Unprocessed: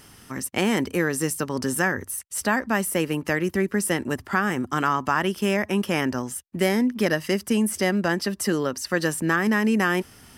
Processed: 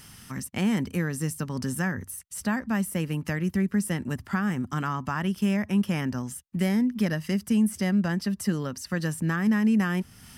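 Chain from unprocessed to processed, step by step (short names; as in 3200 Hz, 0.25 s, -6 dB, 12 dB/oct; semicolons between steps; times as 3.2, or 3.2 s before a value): resonant low shelf 260 Hz +8.5 dB, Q 1.5; mismatched tape noise reduction encoder only; gain -8 dB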